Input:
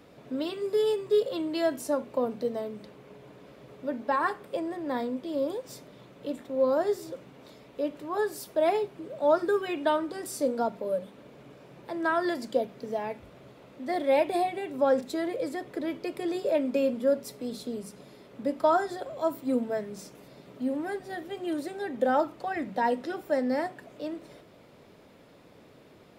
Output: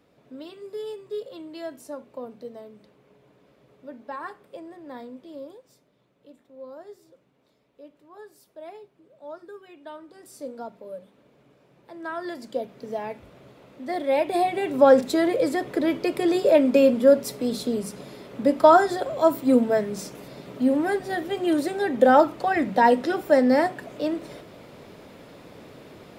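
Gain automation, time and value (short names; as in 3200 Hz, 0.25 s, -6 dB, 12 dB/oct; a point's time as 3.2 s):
5.33 s -8.5 dB
5.77 s -16.5 dB
9.78 s -16.5 dB
10.46 s -8.5 dB
11.84 s -8.5 dB
12.94 s +1 dB
14.19 s +1 dB
14.67 s +9 dB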